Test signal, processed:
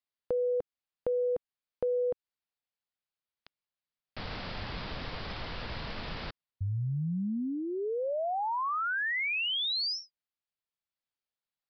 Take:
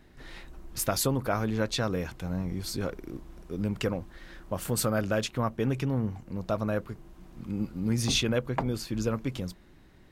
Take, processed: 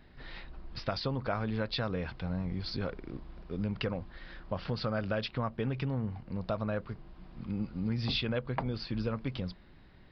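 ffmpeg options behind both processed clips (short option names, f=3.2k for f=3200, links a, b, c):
-af "equalizer=f=330:t=o:w=0.68:g=-5,acompressor=threshold=-30dB:ratio=2.5,aresample=11025,aresample=44100"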